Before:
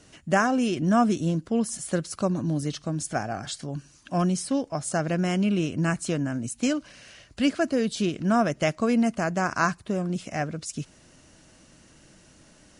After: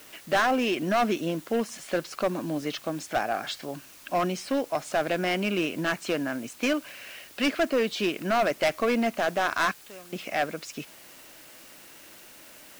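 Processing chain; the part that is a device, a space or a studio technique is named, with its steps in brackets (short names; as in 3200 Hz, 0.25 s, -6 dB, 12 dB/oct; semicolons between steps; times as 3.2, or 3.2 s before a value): 9.71–10.13 pre-emphasis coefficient 0.9; drive-through speaker (BPF 380–3800 Hz; bell 2400 Hz +5.5 dB 0.53 oct; hard clip -23.5 dBFS, distortion -8 dB; white noise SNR 22 dB); gain +4.5 dB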